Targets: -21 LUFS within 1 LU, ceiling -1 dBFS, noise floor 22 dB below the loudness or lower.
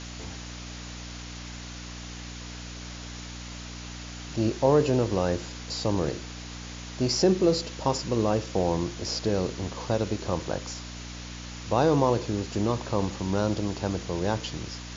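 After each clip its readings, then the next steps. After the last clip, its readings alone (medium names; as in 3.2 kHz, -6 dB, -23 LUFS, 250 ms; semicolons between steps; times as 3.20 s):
hum 60 Hz; highest harmonic 300 Hz; hum level -38 dBFS; noise floor -40 dBFS; noise floor target -50 dBFS; loudness -27.5 LUFS; peak level -9.0 dBFS; loudness target -21.0 LUFS
-> de-hum 60 Hz, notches 5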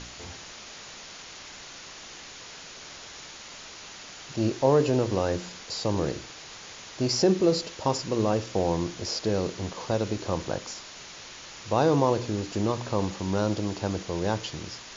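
hum not found; noise floor -44 dBFS; noise floor target -50 dBFS
-> noise print and reduce 6 dB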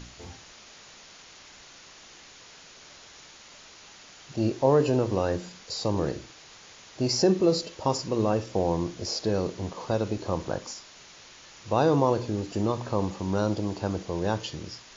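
noise floor -50 dBFS; loudness -27.5 LUFS; peak level -9.0 dBFS; loudness target -21.0 LUFS
-> trim +6.5 dB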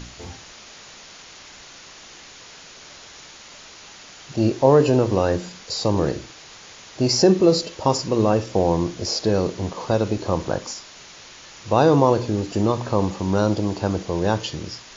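loudness -21.0 LUFS; peak level -2.5 dBFS; noise floor -44 dBFS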